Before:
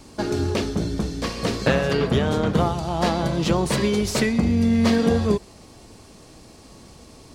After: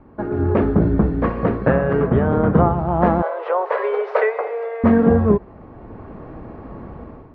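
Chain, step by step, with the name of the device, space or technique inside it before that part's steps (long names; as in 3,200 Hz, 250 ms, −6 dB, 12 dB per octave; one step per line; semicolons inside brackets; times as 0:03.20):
0:03.22–0:04.84: Butterworth high-pass 430 Hz 72 dB per octave
action camera in a waterproof case (low-pass filter 1,600 Hz 24 dB per octave; automatic gain control gain up to 13 dB; level −1 dB; AAC 128 kbit/s 48,000 Hz)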